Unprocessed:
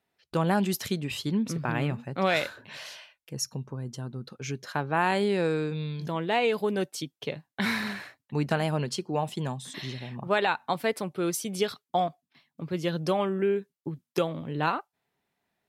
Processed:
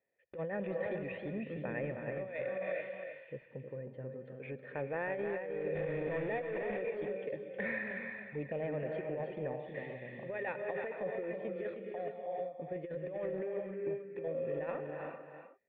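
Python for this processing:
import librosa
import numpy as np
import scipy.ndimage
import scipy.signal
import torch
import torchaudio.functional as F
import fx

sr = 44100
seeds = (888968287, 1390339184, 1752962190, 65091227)

p1 = fx.rev_gated(x, sr, seeds[0], gate_ms=470, shape='rising', drr_db=8.0)
p2 = 10.0 ** (-27.5 / 20.0) * (np.abs((p1 / 10.0 ** (-27.5 / 20.0) + 3.0) % 4.0 - 2.0) - 1.0)
p3 = p1 + F.gain(torch.from_numpy(p2), -9.0).numpy()
p4 = fx.quant_companded(p3, sr, bits=2, at=(5.75, 6.82))
p5 = fx.env_flanger(p4, sr, rest_ms=2.8, full_db=-23.0, at=(7.97, 8.61), fade=0.02)
p6 = fx.formant_cascade(p5, sr, vowel='e')
p7 = fx.over_compress(p6, sr, threshold_db=-39.0, ratio=-1.0)
p8 = p7 + fx.echo_single(p7, sr, ms=315, db=-7.0, dry=0)
y = F.gain(torch.from_numpy(p8), 1.5).numpy()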